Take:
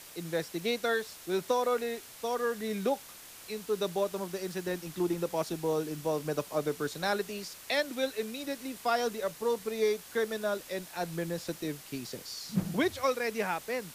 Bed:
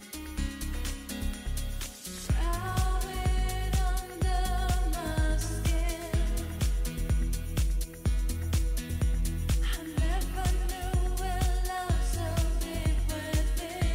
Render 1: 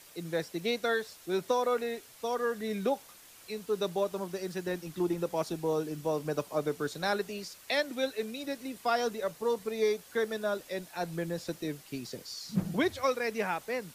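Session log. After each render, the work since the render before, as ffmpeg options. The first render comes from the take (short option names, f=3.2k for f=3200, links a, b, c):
-af "afftdn=nr=6:nf=-50"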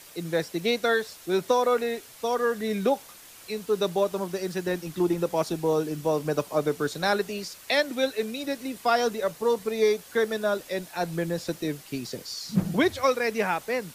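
-af "volume=6dB"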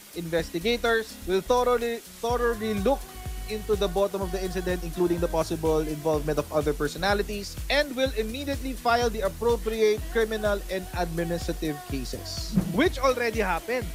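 -filter_complex "[1:a]volume=-8dB[a];[0:a][a]amix=inputs=2:normalize=0"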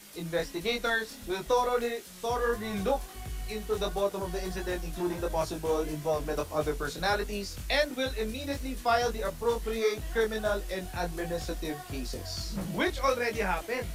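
-filter_complex "[0:a]acrossover=split=480|1700[a][b][c];[a]asoftclip=type=tanh:threshold=-28dB[d];[d][b][c]amix=inputs=3:normalize=0,flanger=delay=19.5:depth=3.9:speed=1.5"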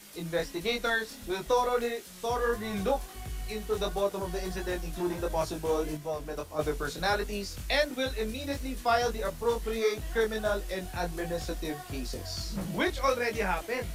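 -filter_complex "[0:a]asplit=3[a][b][c];[a]atrim=end=5.972[d];[b]atrim=start=5.968:end=6.592,asetpts=PTS-STARTPTS,volume=-5dB[e];[c]atrim=start=6.588[f];[d][e]acrossfade=d=0.004:c1=hsin:c2=hsin[g];[g][f]acrossfade=d=0.004:c1=hsin:c2=hsin"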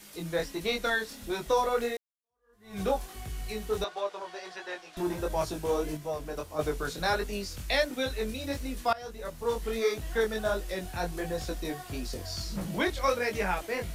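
-filter_complex "[0:a]asettb=1/sr,asplit=3[a][b][c];[a]atrim=end=3.844[d];[b]atrim=start=3.84:end=4.97,asetpts=PTS-STARTPTS,afade=t=in:d=0.004:c=qsin,afade=t=out:st=1.126:d=0.004:c=qsin,highpass=650,lowpass=4.4k[e];[c]atrim=start=4.966[f];[d][e]acrossfade=d=0.004:c1=hsin:c2=qsin[g];[g][f]acrossfade=d=0.004:c1=qsin:c2=hsin,asplit=3[h][i][j];[h]atrim=end=1.97,asetpts=PTS-STARTPTS,afade=t=out:st=1.966:d=0.004:c=hsin[k];[i]atrim=start=1.97:end=8.93,asetpts=PTS-STARTPTS,afade=t=in:d=0.84:c=exp,afade=t=out:st=6.956:d=0.004:c=hsin:silence=0.0891251[l];[j]atrim=start=8.93,asetpts=PTS-STARTPTS,afade=t=in:d=0.7:silence=0.0891251[m];[k][l][m]concat=n=3:v=0:a=1"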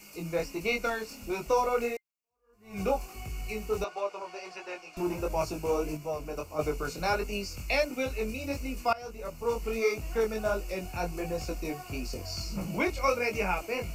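-af "superequalizer=11b=0.355:12b=1.78:13b=0.251:16b=0.562"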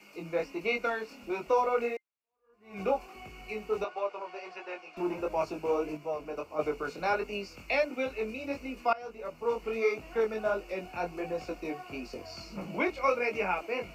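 -filter_complex "[0:a]acrossover=split=200 3800:gain=0.158 1 0.158[a][b][c];[a][b][c]amix=inputs=3:normalize=0"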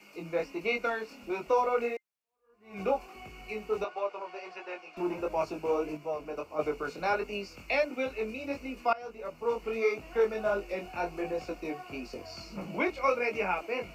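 -filter_complex "[0:a]asettb=1/sr,asplit=3[a][b][c];[a]atrim=end=10.124[d];[b]atrim=start=10.12:end=11.39,asetpts=PTS-STARTPTS,afade=t=in:d=0.004:c=qsin,afade=t=out:st=1.266:d=0.004:c=qsin,asplit=2[e][f];[f]adelay=20,volume=-6.5dB[g];[e][g]amix=inputs=2:normalize=0,atrim=end_sample=56007[h];[c]atrim=start=11.386[i];[d][h]acrossfade=d=0.004:c1=hsin:c2=qsin[j];[j][i]acrossfade=d=0.004:c1=qsin:c2=hsin"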